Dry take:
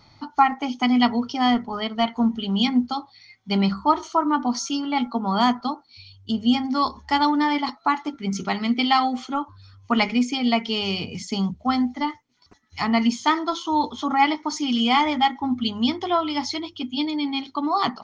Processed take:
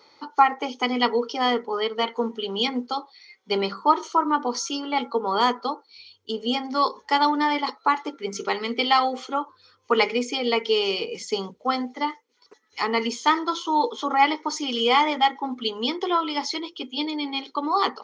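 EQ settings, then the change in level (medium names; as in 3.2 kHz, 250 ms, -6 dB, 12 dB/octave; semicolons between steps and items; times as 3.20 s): resonant high-pass 470 Hz, resonance Q 4.9; peaking EQ 670 Hz -14 dB 0.3 oct; 0.0 dB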